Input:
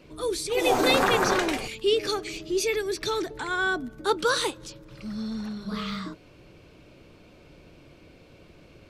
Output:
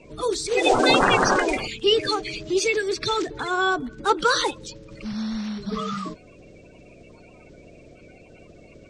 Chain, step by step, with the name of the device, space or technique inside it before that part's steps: clip after many re-uploads (LPF 8300 Hz 24 dB/oct; bin magnitudes rounded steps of 30 dB); gain +4.5 dB

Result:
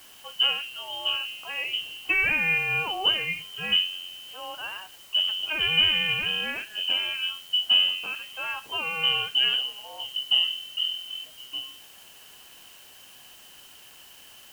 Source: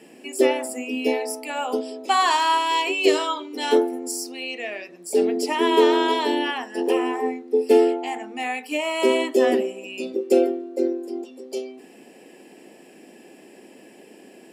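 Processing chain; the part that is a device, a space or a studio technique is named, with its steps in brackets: scrambled radio voice (BPF 310–3100 Hz; inverted band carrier 3400 Hz; white noise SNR 23 dB); gain -4 dB

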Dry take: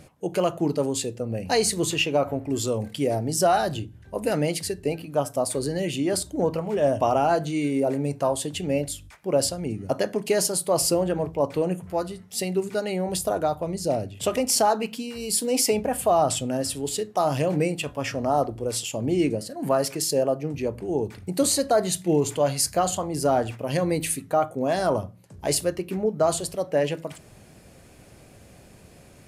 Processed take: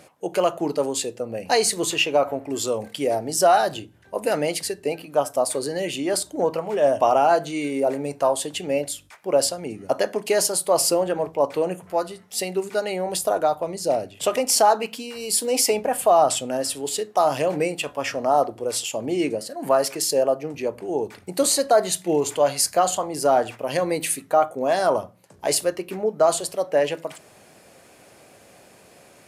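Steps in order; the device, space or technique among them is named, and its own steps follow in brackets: filter by subtraction (in parallel: LPF 710 Hz 12 dB/oct + phase invert); on the sum: gain +2.5 dB

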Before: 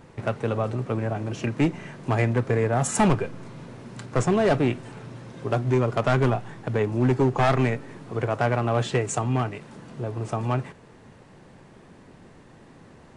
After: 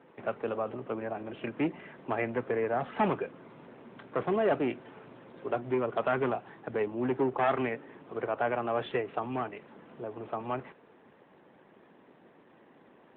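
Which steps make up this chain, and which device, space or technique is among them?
telephone (BPF 280–3600 Hz; gain -4.5 dB; AMR-NB 12.2 kbps 8000 Hz)

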